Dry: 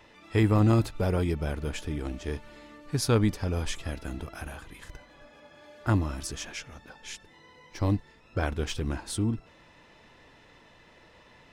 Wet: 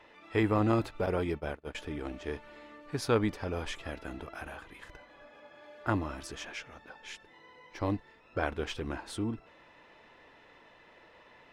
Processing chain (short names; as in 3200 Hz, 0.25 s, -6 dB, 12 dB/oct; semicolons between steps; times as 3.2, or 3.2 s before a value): 1.06–1.75 gate -29 dBFS, range -29 dB; tone controls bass -10 dB, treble -11 dB